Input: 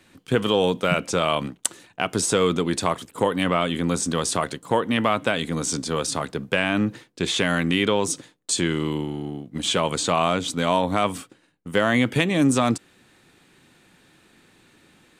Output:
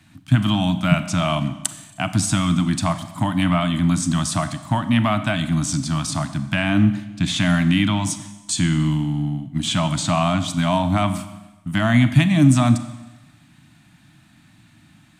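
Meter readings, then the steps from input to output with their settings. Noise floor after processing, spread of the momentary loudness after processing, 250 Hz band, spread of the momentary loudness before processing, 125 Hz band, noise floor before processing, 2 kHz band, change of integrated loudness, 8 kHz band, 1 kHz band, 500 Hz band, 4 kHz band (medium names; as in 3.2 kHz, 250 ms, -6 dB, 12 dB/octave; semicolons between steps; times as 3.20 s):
-53 dBFS, 9 LU, +5.5 dB, 8 LU, +10.5 dB, -59 dBFS, 0.0 dB, +3.0 dB, +0.5 dB, 0.0 dB, -5.5 dB, +0.5 dB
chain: elliptic band-stop 310–620 Hz, stop band 40 dB; peaking EQ 120 Hz +13 dB 1.7 oct; Schroeder reverb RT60 1.1 s, combs from 30 ms, DRR 11 dB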